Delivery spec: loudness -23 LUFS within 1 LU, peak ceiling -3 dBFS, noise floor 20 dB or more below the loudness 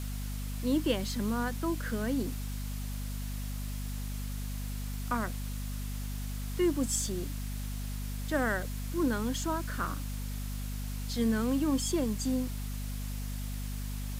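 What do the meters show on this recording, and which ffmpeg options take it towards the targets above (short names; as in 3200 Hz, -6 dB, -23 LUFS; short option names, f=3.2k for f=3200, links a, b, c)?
hum 50 Hz; harmonics up to 250 Hz; hum level -34 dBFS; noise floor -36 dBFS; noise floor target -54 dBFS; loudness -34.0 LUFS; peak -16.5 dBFS; loudness target -23.0 LUFS
-> -af "bandreject=f=50:t=h:w=6,bandreject=f=100:t=h:w=6,bandreject=f=150:t=h:w=6,bandreject=f=200:t=h:w=6,bandreject=f=250:t=h:w=6"
-af "afftdn=nr=18:nf=-36"
-af "volume=11dB"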